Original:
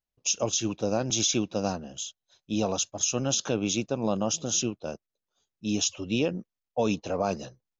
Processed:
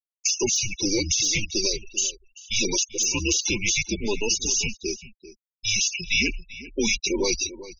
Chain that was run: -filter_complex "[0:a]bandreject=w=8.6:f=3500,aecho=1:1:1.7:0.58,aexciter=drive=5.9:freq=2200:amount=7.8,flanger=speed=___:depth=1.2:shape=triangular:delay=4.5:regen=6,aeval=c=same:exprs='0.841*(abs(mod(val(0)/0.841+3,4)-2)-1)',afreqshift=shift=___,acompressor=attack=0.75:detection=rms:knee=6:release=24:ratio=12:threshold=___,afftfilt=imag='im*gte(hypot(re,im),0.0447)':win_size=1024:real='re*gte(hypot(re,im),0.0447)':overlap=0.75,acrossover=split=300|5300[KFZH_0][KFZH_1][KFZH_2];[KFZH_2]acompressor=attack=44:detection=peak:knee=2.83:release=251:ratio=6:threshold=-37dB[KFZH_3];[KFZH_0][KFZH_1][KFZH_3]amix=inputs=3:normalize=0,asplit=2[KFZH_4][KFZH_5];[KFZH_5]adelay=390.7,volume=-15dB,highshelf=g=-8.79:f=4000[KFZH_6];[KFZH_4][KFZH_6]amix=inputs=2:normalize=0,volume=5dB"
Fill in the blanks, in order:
0.46, -210, -20dB